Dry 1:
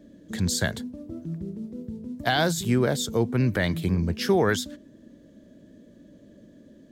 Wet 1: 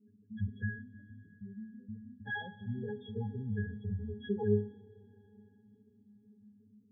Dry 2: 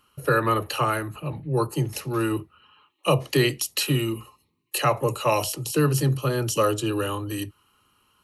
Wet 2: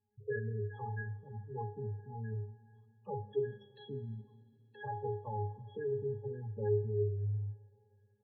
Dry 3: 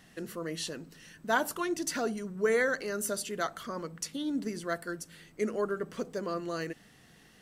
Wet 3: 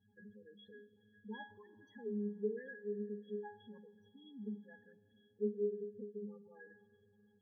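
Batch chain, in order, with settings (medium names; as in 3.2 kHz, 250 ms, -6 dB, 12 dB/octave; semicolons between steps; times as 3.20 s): pitch-class resonator G#, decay 0.34 s; spectral gate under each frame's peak -15 dB strong; Schroeder reverb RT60 3.4 s, combs from 27 ms, DRR 16 dB; trim +1.5 dB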